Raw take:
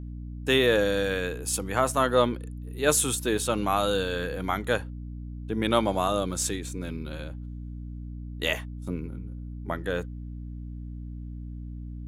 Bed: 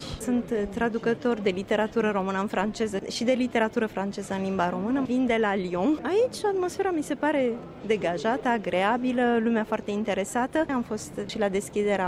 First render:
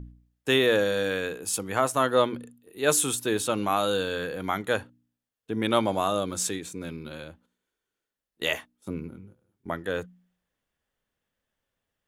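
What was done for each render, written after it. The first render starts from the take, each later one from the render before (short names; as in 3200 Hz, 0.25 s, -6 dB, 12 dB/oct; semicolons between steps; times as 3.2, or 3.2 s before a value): de-hum 60 Hz, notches 5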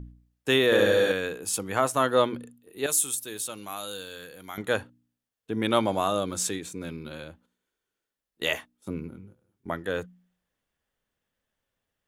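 0.65–1.12 flutter echo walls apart 11.7 m, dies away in 1.3 s; 2.86–4.58 pre-emphasis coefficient 0.8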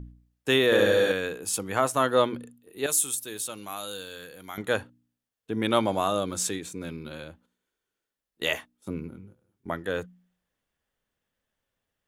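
nothing audible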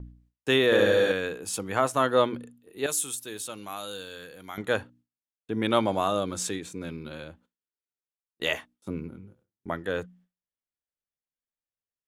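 gate with hold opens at -54 dBFS; high shelf 8500 Hz -8 dB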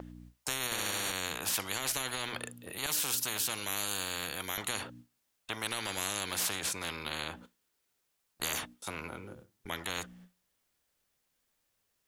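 limiter -15 dBFS, peak gain reduction 8 dB; spectral compressor 10:1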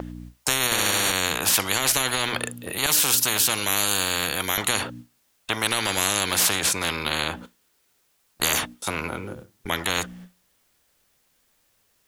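gain +12 dB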